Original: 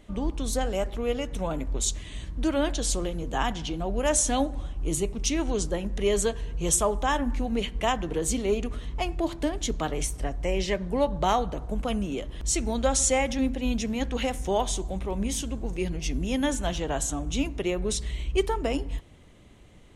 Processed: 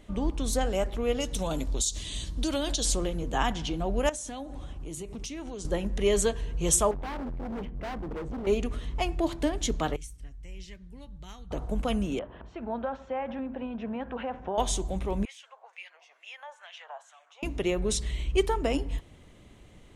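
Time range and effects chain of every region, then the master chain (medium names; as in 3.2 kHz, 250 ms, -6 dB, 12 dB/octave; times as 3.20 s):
1.20–2.85 s: resonant high shelf 2.9 kHz +9.5 dB, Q 1.5 + compression 10:1, threshold -24 dBFS
4.09–5.65 s: high-pass 54 Hz + compression 10:1, threshold -34 dBFS
6.91–8.47 s: Bessel low-pass 740 Hz + hard clipper -33 dBFS
9.96–11.51 s: amplifier tone stack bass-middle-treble 6-0-2 + band-stop 1.1 kHz, Q 23
12.19–14.58 s: compression, threshold -28 dBFS + cabinet simulation 120–2300 Hz, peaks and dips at 140 Hz -9 dB, 310 Hz -6 dB, 670 Hz +5 dB, 960 Hz +6 dB, 1.5 kHz +5 dB, 2.1 kHz -8 dB
15.25–17.43 s: steep high-pass 570 Hz + compression 3:1, threshold -36 dBFS + LFO band-pass sine 2.2 Hz 870–2500 Hz
whole clip: none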